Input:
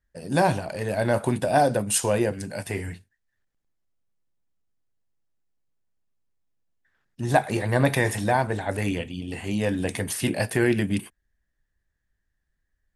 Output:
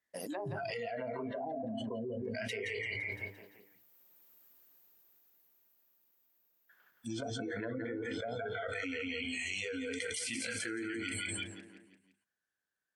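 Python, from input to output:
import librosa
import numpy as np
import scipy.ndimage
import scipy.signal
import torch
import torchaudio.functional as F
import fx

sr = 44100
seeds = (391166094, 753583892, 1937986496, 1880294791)

p1 = fx.doppler_pass(x, sr, speed_mps=23, closest_m=13.0, pass_at_s=4.32)
p2 = scipy.signal.sosfilt(scipy.signal.butter(2, 240.0, 'highpass', fs=sr, output='sos'), p1)
p3 = fx.env_lowpass_down(p2, sr, base_hz=310.0, full_db=-33.0)
p4 = fx.low_shelf(p3, sr, hz=380.0, db=-4.5)
p5 = p4 + fx.echo_feedback(p4, sr, ms=171, feedback_pct=52, wet_db=-6, dry=0)
p6 = fx.noise_reduce_blind(p5, sr, reduce_db=23)
p7 = fx.hum_notches(p6, sr, base_hz=50, count=9)
y = fx.env_flatten(p7, sr, amount_pct=100)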